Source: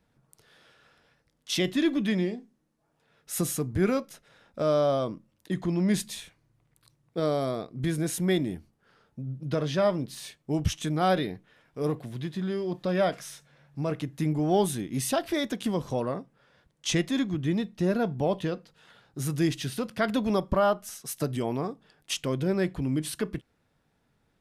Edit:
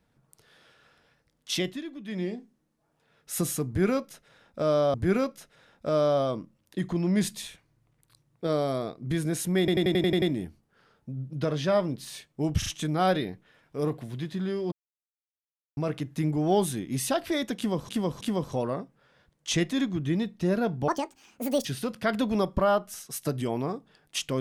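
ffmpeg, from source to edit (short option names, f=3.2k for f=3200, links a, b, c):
-filter_complex "[0:a]asplit=19[a][b][c][d][e][f][g][h][i][j][k][l][m][n][o][p][q][r][s];[a]atrim=end=1.83,asetpts=PTS-STARTPTS,afade=t=out:st=1.53:d=0.3:silence=0.188365[t];[b]atrim=start=1.83:end=2.05,asetpts=PTS-STARTPTS,volume=-14.5dB[u];[c]atrim=start=2.05:end=4.942,asetpts=PTS-STARTPTS,afade=t=in:d=0.3:silence=0.188365[v];[d]atrim=start=3.668:end=8.412[w];[e]atrim=start=8.318:end=8.412[x];[f]atrim=start=8.318:end=8.412[y];[g]atrim=start=8.318:end=8.412[z];[h]atrim=start=8.318:end=8.412[aa];[i]atrim=start=8.318:end=8.412[ab];[j]atrim=start=8.318:end=8.412[ac];[k]atrim=start=8.318:end=10.722[ad];[l]atrim=start=10.678:end=10.722[ae];[m]atrim=start=10.678:end=12.74,asetpts=PTS-STARTPTS,afade=t=out:st=2.058:d=0.004:c=hsin[af];[n]atrim=start=12.74:end=13.79,asetpts=PTS-STARTPTS,volume=0[ag];[o]atrim=start=13.79:end=15.912,asetpts=PTS-STARTPTS,afade=t=in:d=0.004:c=hsin[ah];[p]atrim=start=15.588:end=15.912[ai];[q]atrim=start=15.588:end=18.264[aj];[r]atrim=start=18.26:end=19.6,asetpts=PTS-STARTPTS,asetrate=76734,aresample=44100,atrim=end_sample=33962,asetpts=PTS-STARTPTS[ak];[s]atrim=start=19.596[al];[t][u][v]concat=n=3:v=0:a=1[am];[am][w]acrossfade=d=0.004:c1=hsin:c2=hsin[an];[an][x]acrossfade=d=0.004:c1=hsin:c2=hsin[ao];[ao][y]acrossfade=d=0.004:c1=hsin:c2=hsin[ap];[ap][z]acrossfade=d=0.004:c1=hsin:c2=hsin[aq];[aq][aa]acrossfade=d=0.004:c1=hsin:c2=hsin[ar];[ar][ab]acrossfade=d=0.004:c1=hsin:c2=hsin[as];[as][ac]acrossfade=d=0.004:c1=hsin:c2=hsin[at];[at][ad]acrossfade=d=0.004:c1=hsin:c2=hsin[au];[au][ae]acrossfade=d=0.004:c1=hsin:c2=hsin[av];[af][ag][ah]concat=n=3:v=0:a=1[aw];[av][aw]acrossfade=d=0.004:c1=hsin:c2=hsin[ax];[ax][ai]acrossfade=d=0.004:c1=hsin:c2=hsin[ay];[ay][aj]acrossfade=d=0.004:c1=hsin:c2=hsin[az];[az][ak]acrossfade=d=0.004:c1=hsin:c2=hsin[ba];[ba][al]acrossfade=d=0.004:c1=hsin:c2=hsin"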